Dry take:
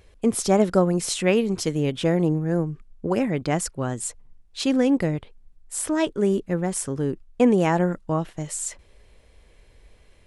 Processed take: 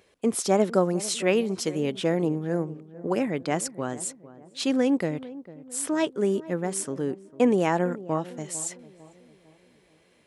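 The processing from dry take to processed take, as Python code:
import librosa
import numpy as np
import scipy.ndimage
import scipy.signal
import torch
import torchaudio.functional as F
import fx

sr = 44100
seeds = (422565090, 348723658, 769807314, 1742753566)

p1 = scipy.signal.sosfilt(scipy.signal.butter(2, 200.0, 'highpass', fs=sr, output='sos'), x)
p2 = p1 + fx.echo_filtered(p1, sr, ms=450, feedback_pct=48, hz=1000.0, wet_db=-16.5, dry=0)
y = p2 * librosa.db_to_amplitude(-2.0)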